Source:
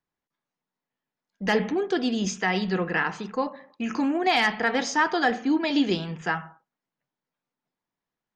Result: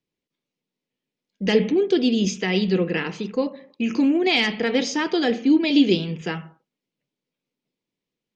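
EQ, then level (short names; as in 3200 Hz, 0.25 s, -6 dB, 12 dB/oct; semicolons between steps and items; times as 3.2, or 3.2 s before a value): air absorption 89 m; low shelf 99 Hz -9 dB; band shelf 1100 Hz -13.5 dB; +7.5 dB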